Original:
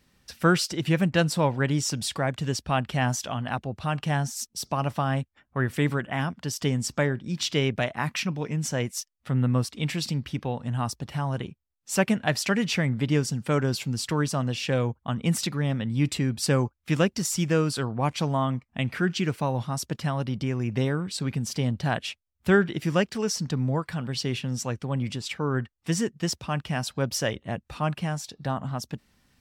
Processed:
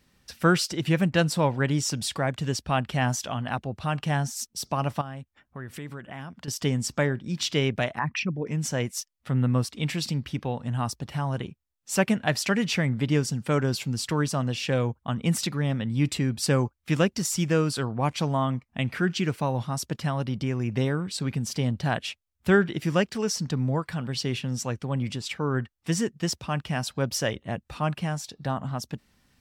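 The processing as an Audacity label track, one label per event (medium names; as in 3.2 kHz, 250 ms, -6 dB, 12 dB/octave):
5.010000	6.480000	compression 3:1, threshold -38 dBFS
7.990000	8.470000	resonances exaggerated exponent 2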